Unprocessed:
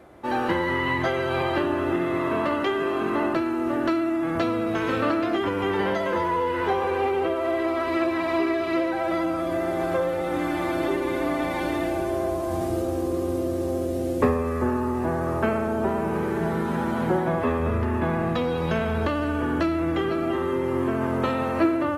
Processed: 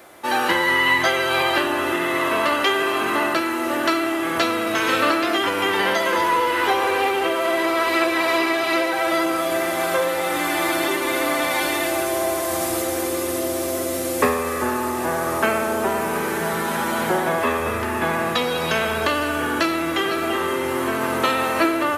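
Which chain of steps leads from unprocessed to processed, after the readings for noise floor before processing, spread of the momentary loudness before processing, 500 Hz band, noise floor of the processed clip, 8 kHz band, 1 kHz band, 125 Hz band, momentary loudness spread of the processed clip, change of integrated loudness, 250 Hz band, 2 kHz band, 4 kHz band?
-27 dBFS, 3 LU, +2.5 dB, -24 dBFS, +18.5 dB, +6.0 dB, -6.0 dB, 4 LU, +4.5 dB, -0.5 dB, +10.0 dB, +13.5 dB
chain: tilt EQ +4 dB/octave; echo that smears into a reverb 1493 ms, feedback 65%, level -13.5 dB; trim +6 dB

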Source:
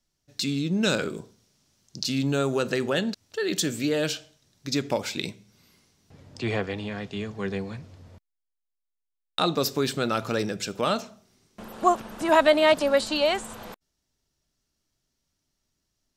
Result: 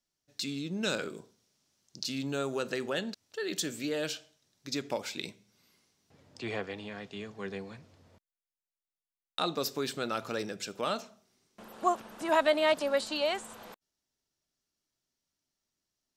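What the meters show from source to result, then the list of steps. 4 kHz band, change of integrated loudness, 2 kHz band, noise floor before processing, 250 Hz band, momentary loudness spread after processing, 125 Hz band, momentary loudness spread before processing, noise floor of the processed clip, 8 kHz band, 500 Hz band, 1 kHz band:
-6.5 dB, -7.5 dB, -6.5 dB, -82 dBFS, -9.0 dB, 16 LU, -12.5 dB, 14 LU, under -85 dBFS, -6.5 dB, -7.5 dB, -7.0 dB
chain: bass shelf 140 Hz -12 dB; trim -6.5 dB

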